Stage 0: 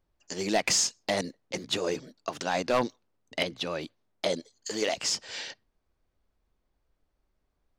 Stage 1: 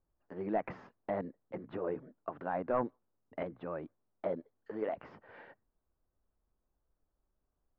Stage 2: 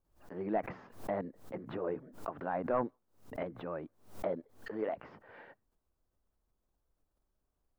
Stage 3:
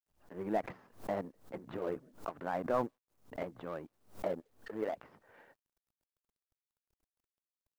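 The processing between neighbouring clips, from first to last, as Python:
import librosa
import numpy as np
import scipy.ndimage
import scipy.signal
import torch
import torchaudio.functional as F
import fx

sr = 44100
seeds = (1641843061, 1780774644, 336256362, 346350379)

y1 = scipy.signal.sosfilt(scipy.signal.butter(4, 1500.0, 'lowpass', fs=sr, output='sos'), x)
y1 = y1 * 10.0 ** (-6.0 / 20.0)
y2 = fx.pre_swell(y1, sr, db_per_s=130.0)
y3 = fx.law_mismatch(y2, sr, coded='A')
y3 = y3 * 10.0 ** (1.0 / 20.0)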